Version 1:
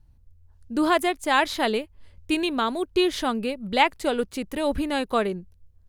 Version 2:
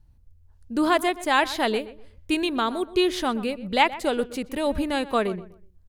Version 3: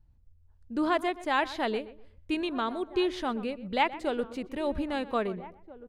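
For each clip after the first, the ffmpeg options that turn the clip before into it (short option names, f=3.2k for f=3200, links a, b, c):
-filter_complex "[0:a]asplit=2[a][b];[b]adelay=124,lowpass=f=2.3k:p=1,volume=-15.5dB,asplit=2[c][d];[d]adelay=124,lowpass=f=2.3k:p=1,volume=0.28,asplit=2[e][f];[f]adelay=124,lowpass=f=2.3k:p=1,volume=0.28[g];[a][c][e][g]amix=inputs=4:normalize=0"
-filter_complex "[0:a]aemphasis=mode=reproduction:type=50fm,asplit=2[a][b];[b]adelay=1633,volume=-17dB,highshelf=f=4k:g=-36.7[c];[a][c]amix=inputs=2:normalize=0,volume=-6dB"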